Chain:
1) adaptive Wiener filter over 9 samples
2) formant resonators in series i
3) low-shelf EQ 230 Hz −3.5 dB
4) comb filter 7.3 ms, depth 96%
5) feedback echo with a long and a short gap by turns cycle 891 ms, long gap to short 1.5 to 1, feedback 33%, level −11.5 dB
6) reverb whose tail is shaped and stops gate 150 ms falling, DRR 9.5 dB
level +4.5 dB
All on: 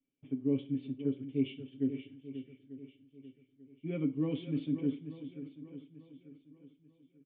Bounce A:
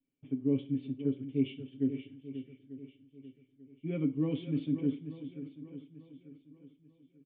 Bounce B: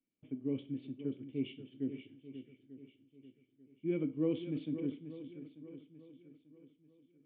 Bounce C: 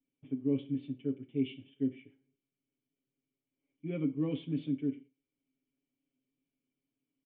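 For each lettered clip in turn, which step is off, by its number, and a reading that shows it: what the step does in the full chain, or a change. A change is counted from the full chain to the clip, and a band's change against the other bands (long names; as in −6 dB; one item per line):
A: 3, 125 Hz band +1.5 dB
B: 4, 125 Hz band −3.0 dB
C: 5, echo-to-direct ratio −6.5 dB to −9.5 dB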